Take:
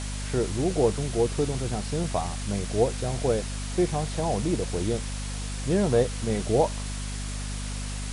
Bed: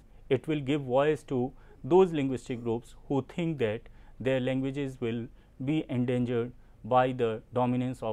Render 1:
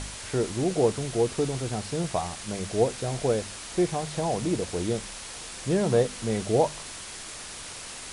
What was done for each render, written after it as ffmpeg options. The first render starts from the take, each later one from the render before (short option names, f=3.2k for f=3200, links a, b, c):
-af "bandreject=f=50:t=h:w=4,bandreject=f=100:t=h:w=4,bandreject=f=150:t=h:w=4,bandreject=f=200:t=h:w=4,bandreject=f=250:t=h:w=4"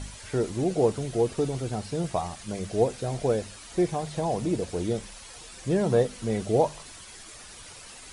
-af "afftdn=nr=9:nf=-40"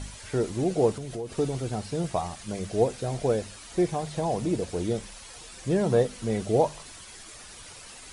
-filter_complex "[0:a]asettb=1/sr,asplit=3[a][b][c];[a]atrim=end=0.924[d];[b]atrim=start=0.92:end=1.37,asetpts=PTS-STARTPTS,afade=t=in:d=0.004:c=qsin,afade=t=out:st=0.446:d=0.004:c=qsin,acompressor=threshold=-32dB:ratio=4:attack=3.2:release=140:knee=1:detection=peak[e];[c]atrim=start=1.366[f];[d][e]acrossfade=d=0.004:c1=hsin:c2=qsin[g];[g][f]acrossfade=d=0.004:c1=qsin:c2=hsin"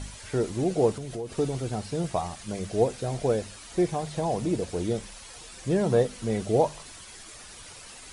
-af anull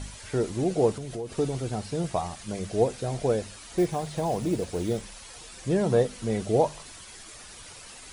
-filter_complex "[0:a]asettb=1/sr,asplit=3[a][b][c];[a]atrim=end=3.784[d];[b]atrim=start=3.78:end=5.02,asetpts=PTS-STARTPTS,afade=t=in:d=0.004:c=qsin,afade=t=out:st=1.236:d=0.004:c=qsin,acrusher=bits=7:mode=log:mix=0:aa=0.000001[e];[c]atrim=start=5.016[f];[d][e]acrossfade=d=0.004:c1=hsin:c2=qsin[g];[g][f]acrossfade=d=0.004:c1=qsin:c2=hsin"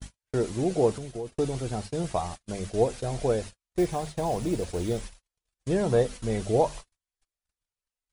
-af "asubboost=boost=3:cutoff=79,agate=range=-51dB:threshold=-36dB:ratio=16:detection=peak"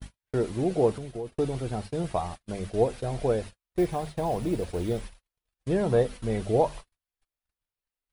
-af "equalizer=f=6.8k:t=o:w=1:g=-9"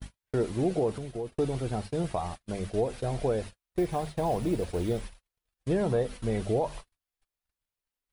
-af "alimiter=limit=-18.5dB:level=0:latency=1:release=117"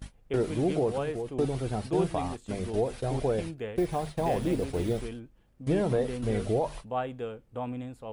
-filter_complex "[1:a]volume=-7.5dB[a];[0:a][a]amix=inputs=2:normalize=0"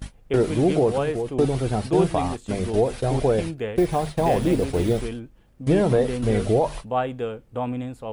-af "volume=7.5dB"